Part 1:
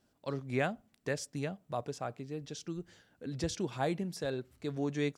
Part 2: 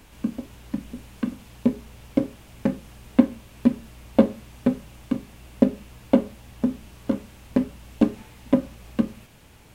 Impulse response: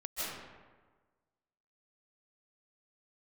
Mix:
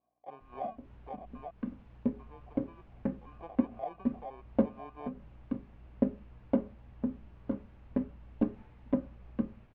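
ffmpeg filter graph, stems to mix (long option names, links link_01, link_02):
-filter_complex "[0:a]acrusher=samples=33:mix=1:aa=0.000001,aeval=exprs='val(0)+0.000631*(sin(2*PI*60*n/s)+sin(2*PI*2*60*n/s)/2+sin(2*PI*3*60*n/s)/3+sin(2*PI*4*60*n/s)/4+sin(2*PI*5*60*n/s)/5)':channel_layout=same,asplit=3[link_01][link_02][link_03];[link_01]bandpass=frequency=730:width_type=q:width=8,volume=0dB[link_04];[link_02]bandpass=frequency=1090:width_type=q:width=8,volume=-6dB[link_05];[link_03]bandpass=frequency=2440:width_type=q:width=8,volume=-9dB[link_06];[link_04][link_05][link_06]amix=inputs=3:normalize=0,volume=3dB,asplit=3[link_07][link_08][link_09];[link_07]atrim=end=1.51,asetpts=PTS-STARTPTS,afade=type=out:start_time=1.506:duration=0.004:curve=hsin[link_10];[link_08]atrim=start=1.51:end=2.17,asetpts=PTS-STARTPTS,volume=0[link_11];[link_09]atrim=start=2.17,asetpts=PTS-STARTPTS,afade=type=in:duration=0.004:curve=hsin[link_12];[link_10][link_11][link_12]concat=n=3:v=0:a=1,asplit=2[link_13][link_14];[1:a]lowshelf=frequency=77:gain=8.5,adelay=400,volume=-11dB[link_15];[link_14]apad=whole_len=447197[link_16];[link_15][link_16]sidechaincompress=threshold=-48dB:ratio=4:attack=9.1:release=196[link_17];[link_13][link_17]amix=inputs=2:normalize=0,lowpass=1700"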